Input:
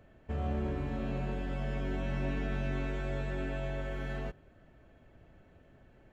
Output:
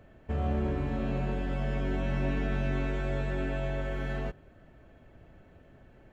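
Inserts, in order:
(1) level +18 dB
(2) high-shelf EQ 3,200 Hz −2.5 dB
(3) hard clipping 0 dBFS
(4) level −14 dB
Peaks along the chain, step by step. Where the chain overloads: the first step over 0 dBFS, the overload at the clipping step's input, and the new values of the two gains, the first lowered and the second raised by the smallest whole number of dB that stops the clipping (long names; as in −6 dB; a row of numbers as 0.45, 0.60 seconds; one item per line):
−4.0, −4.0, −4.0, −18.0 dBFS
no step passes full scale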